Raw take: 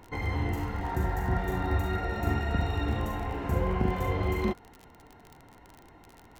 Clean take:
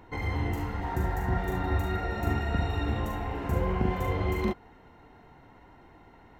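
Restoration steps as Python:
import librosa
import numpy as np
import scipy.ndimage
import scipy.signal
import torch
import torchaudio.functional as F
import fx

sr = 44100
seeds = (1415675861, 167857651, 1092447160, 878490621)

y = fx.fix_declick_ar(x, sr, threshold=6.5)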